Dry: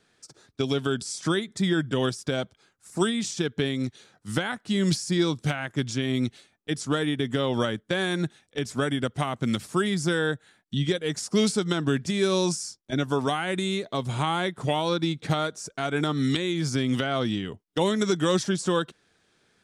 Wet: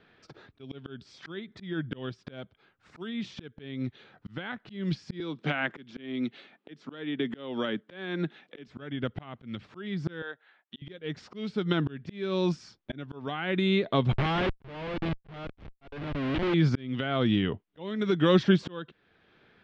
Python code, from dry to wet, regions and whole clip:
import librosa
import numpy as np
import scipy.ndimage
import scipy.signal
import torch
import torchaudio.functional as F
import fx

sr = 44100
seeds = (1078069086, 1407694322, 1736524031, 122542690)

y = fx.chain(x, sr, fx.highpass(hz=180.0, slope=24),
    fx.band_squash(depth_pct=70), at=(5.2, 8.68))
y = fx.chain(y, sr, fx.highpass(hz=700.0, slope=12),
    fx.high_shelf(hz=2900.0, db=-8.5), at=(10.22, 10.82))
y = fx.chain(y, sr, fx.level_steps(step_db=14),
    fx.schmitt(flips_db=-35.0), at=(14.12, 16.54))
y = fx.dynamic_eq(y, sr, hz=860.0, q=0.79, threshold_db=-36.0, ratio=4.0, max_db=-4)
y = scipy.signal.sosfilt(scipy.signal.butter(4, 3300.0, 'lowpass', fs=sr, output='sos'), y)
y = fx.auto_swell(y, sr, attack_ms=694.0)
y = y * librosa.db_to_amplitude(5.5)